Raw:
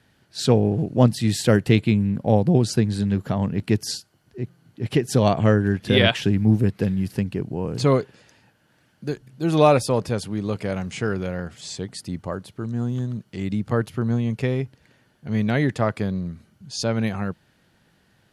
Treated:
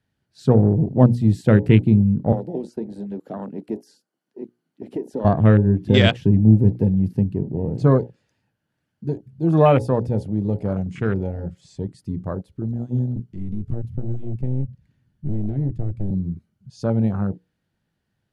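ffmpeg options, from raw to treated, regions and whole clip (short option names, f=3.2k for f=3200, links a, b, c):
-filter_complex "[0:a]asettb=1/sr,asplit=3[a][b][c];[a]atrim=end=2.324[d];[b]atrim=start=2.32:end=5.25,asetpts=PTS-STARTPTS,afade=t=in:d=0.004:c=qsin,afade=t=out:st=2.926:d=0.004:c=qsin,acrossover=split=380|1700|6800[e][f][g][h];[e]acompressor=threshold=-28dB:ratio=3[i];[f]acompressor=threshold=-30dB:ratio=3[j];[g]acompressor=threshold=-45dB:ratio=3[k];[h]acompressor=threshold=-46dB:ratio=3[l];[i][j][k][l]amix=inputs=4:normalize=0,highpass=f=230:w=0.5412,highpass=f=230:w=1.3066[m];[c]atrim=start=5.246[n];[d][m]acrossfade=d=0.004:c1=hsin:c2=qsin[o];[o][n]acrossfade=d=0.004:c1=qsin:c2=hsin,asettb=1/sr,asplit=3[p][q][r];[p]atrim=end=13.164[s];[q]atrim=start=13.16:end=16.11,asetpts=PTS-STARTPTS,afade=t=in:d=0.004:c=qsin,afade=t=out:st=2.946:d=0.004:c=qsin,asubboost=boost=10:cutoff=200,acrossover=split=270|2000[t][u][v];[t]acompressor=threshold=-25dB:ratio=4[w];[u]acompressor=threshold=-37dB:ratio=4[x];[v]acompressor=threshold=-52dB:ratio=4[y];[w][x][y]amix=inputs=3:normalize=0,aeval=exprs='clip(val(0),-1,0.0119)':c=same[z];[r]atrim=start=16.106[aa];[s][z]acrossfade=d=0.004:c1=hsin:c2=qsin[ab];[ab][aa]acrossfade=d=0.004:c1=qsin:c2=hsin,bandreject=f=60:t=h:w=6,bandreject=f=120:t=h:w=6,bandreject=f=180:t=h:w=6,bandreject=f=240:t=h:w=6,bandreject=f=300:t=h:w=6,bandreject=f=360:t=h:w=6,bandreject=f=420:t=h:w=6,bandreject=f=480:t=h:w=6,bandreject=f=540:t=h:w=6,afwtdn=0.0355,lowshelf=f=290:g=8,volume=-1dB"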